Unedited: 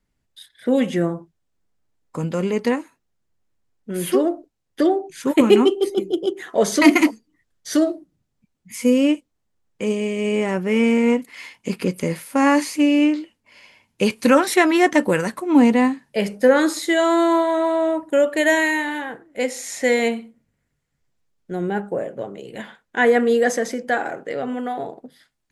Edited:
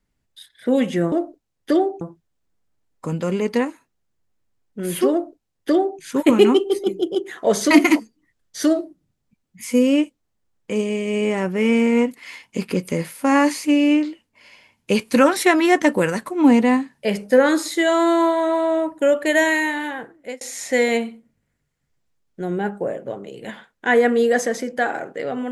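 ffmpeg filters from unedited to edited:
-filter_complex "[0:a]asplit=4[a][b][c][d];[a]atrim=end=1.122[e];[b]atrim=start=4.218:end=5.112[f];[c]atrim=start=1.118:end=19.52,asetpts=PTS-STARTPTS,afade=t=out:st=18.132:d=0.27[g];[d]atrim=start=19.52,asetpts=PTS-STARTPTS,afade=t=in:d=0.004:c=hsin[h];[e][f]acrossfade=d=0.004:c1=hsin:c2=hsin[i];[g][h]concat=n=2:v=0:a=1[j];[i][j]acrossfade=d=0.004:c1=hsin:c2=hsin"

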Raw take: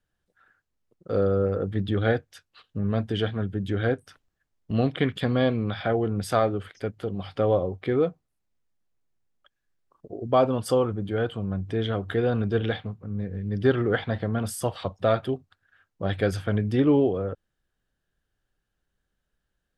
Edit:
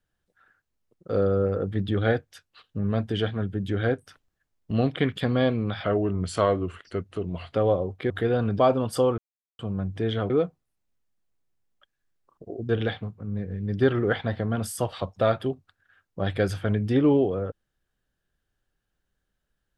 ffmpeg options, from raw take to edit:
-filter_complex "[0:a]asplit=9[a][b][c][d][e][f][g][h][i];[a]atrim=end=5.844[j];[b]atrim=start=5.84:end=7.37,asetpts=PTS-STARTPTS,asetrate=39690,aresample=44100[k];[c]atrim=start=7.366:end=7.932[l];[d]atrim=start=12.028:end=12.522[m];[e]atrim=start=10.318:end=10.91,asetpts=PTS-STARTPTS,afade=t=out:st=0.588:d=0.004:c=hsin[n];[f]atrim=start=10.91:end=11.32,asetpts=PTS-STARTPTS,volume=0[o];[g]atrim=start=11.32:end=12.032,asetpts=PTS-STARTPTS,afade=t=in:d=0.004:c=hsin[p];[h]atrim=start=7.928:end=10.322[q];[i]atrim=start=12.518[r];[j][k]acrossfade=d=0.004:c1=hsin:c2=hsin[s];[s][l]acrossfade=d=0.004:c1=hsin:c2=hsin[t];[t][m]acrossfade=d=0.004:c1=hsin:c2=hsin[u];[n][o][p]concat=n=3:v=0:a=1[v];[u][v]acrossfade=d=0.004:c1=hsin:c2=hsin[w];[w][q]acrossfade=d=0.004:c1=hsin:c2=hsin[x];[x][r]acrossfade=d=0.004:c1=hsin:c2=hsin"

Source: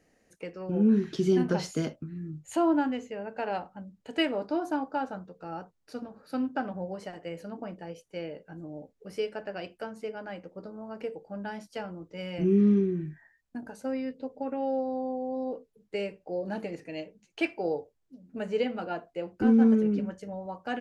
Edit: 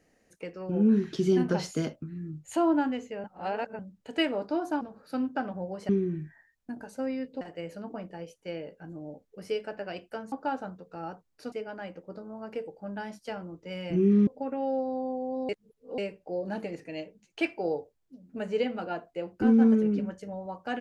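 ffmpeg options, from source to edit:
-filter_complex "[0:a]asplit=11[a][b][c][d][e][f][g][h][i][j][k];[a]atrim=end=3.242[l];[b]atrim=start=3.238:end=3.792,asetpts=PTS-STARTPTS,areverse[m];[c]atrim=start=3.788:end=4.812[n];[d]atrim=start=6.008:end=7.092[o];[e]atrim=start=12.748:end=14.272[p];[f]atrim=start=7.088:end=10.002[q];[g]atrim=start=4.808:end=6.012[r];[h]atrim=start=9.998:end=12.752[s];[i]atrim=start=14.268:end=15.492[t];[j]atrim=start=15.488:end=15.982,asetpts=PTS-STARTPTS,areverse[u];[k]atrim=start=15.978[v];[l][m]acrossfade=d=0.004:c1=hsin:c2=hsin[w];[w][n]acrossfade=d=0.004:c1=hsin:c2=hsin[x];[x][o]acrossfade=d=0.004:c1=hsin:c2=hsin[y];[y][p]acrossfade=d=0.004:c1=hsin:c2=hsin[z];[z][q]acrossfade=d=0.004:c1=hsin:c2=hsin[aa];[aa][r]acrossfade=d=0.004:c1=hsin:c2=hsin[ab];[ab][s]acrossfade=d=0.004:c1=hsin:c2=hsin[ac];[ac][t]acrossfade=d=0.004:c1=hsin:c2=hsin[ad];[ad][u]acrossfade=d=0.004:c1=hsin:c2=hsin[ae];[ae][v]acrossfade=d=0.004:c1=hsin:c2=hsin"

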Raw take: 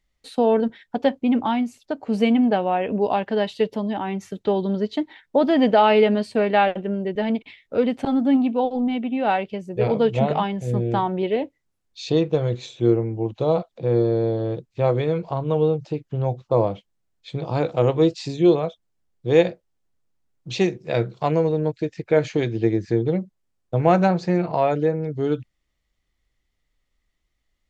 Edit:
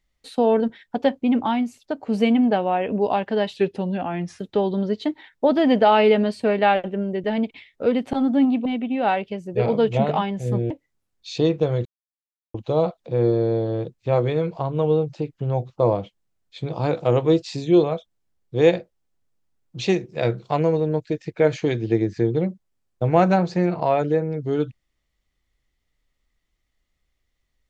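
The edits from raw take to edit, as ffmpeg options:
-filter_complex "[0:a]asplit=7[a][b][c][d][e][f][g];[a]atrim=end=3.564[h];[b]atrim=start=3.56:end=4.31,asetpts=PTS-STARTPTS,asetrate=39690,aresample=44100[i];[c]atrim=start=4.306:end=8.572[j];[d]atrim=start=8.868:end=10.922[k];[e]atrim=start=11.418:end=12.57,asetpts=PTS-STARTPTS,afade=t=out:st=1.148:d=0.004:c=hsin[l];[f]atrim=start=12.57:end=13.26,asetpts=PTS-STARTPTS,volume=0[m];[g]atrim=start=13.26,asetpts=PTS-STARTPTS,afade=t=in:d=0.004:c=hsin[n];[h][i]acrossfade=d=0.004:c1=hsin:c2=hsin[o];[o][j]acrossfade=d=0.004:c1=hsin:c2=hsin[p];[p][k]acrossfade=d=0.004:c1=hsin:c2=hsin[q];[l][m][n]concat=n=3:v=0:a=1[r];[q][r]acrossfade=d=0.004:c1=hsin:c2=hsin"

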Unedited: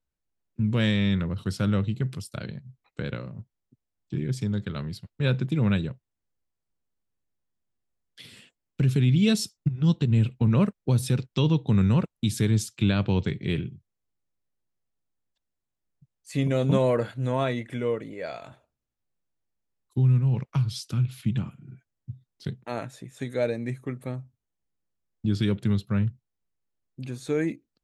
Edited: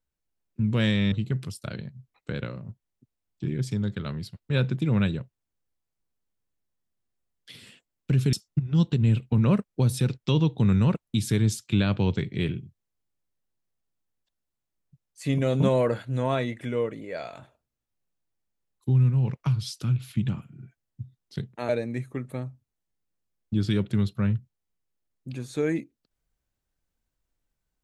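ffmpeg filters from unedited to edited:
-filter_complex "[0:a]asplit=4[a][b][c][d];[a]atrim=end=1.122[e];[b]atrim=start=1.818:end=9.032[f];[c]atrim=start=9.418:end=22.782[g];[d]atrim=start=23.408[h];[e][f]acrossfade=d=0.004:c1=hsin:c2=hsin[i];[i][g]acrossfade=d=0.004:c1=hsin:c2=hsin[j];[j][h]acrossfade=d=0.004:c1=hsin:c2=hsin"

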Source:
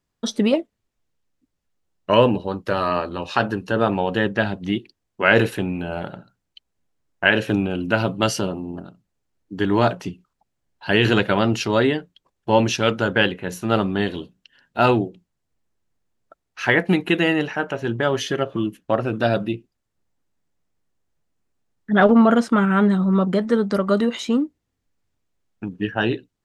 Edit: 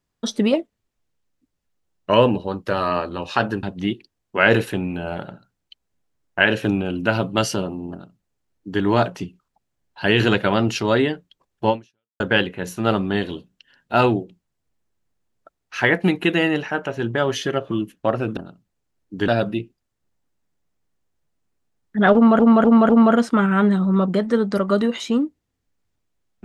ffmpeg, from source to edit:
-filter_complex "[0:a]asplit=8[a][b][c][d][e][f][g][h];[a]atrim=end=3.632[i];[b]atrim=start=4.478:end=13.05,asetpts=PTS-STARTPTS,afade=t=out:st=8.062:d=0.51:c=exp[j];[c]atrim=start=13.05:end=19.222,asetpts=PTS-STARTPTS,afade=t=in:d=0.004:c=hsin[k];[d]atrim=start=8.758:end=9.672[l];[e]atrim=start=19.218:end=22.332[m];[f]atrim=start=22.078:end=22.332[n];[g]atrim=start=22.078:end=22.332[o];[h]atrim=start=22.078[p];[j][k]concat=n=2:v=0:a=1[q];[i][q]acrossfade=d=0.004:c1=hsin:c2=hsin[r];[r][l]acrossfade=d=0.004:c1=hsin:c2=hsin[s];[s][m]acrossfade=d=0.004:c1=hsin:c2=hsin[t];[t][n]acrossfade=d=0.004:c1=hsin:c2=hsin[u];[u][o]acrossfade=d=0.004:c1=hsin:c2=hsin[v];[v][p]acrossfade=d=0.004:c1=hsin:c2=hsin"

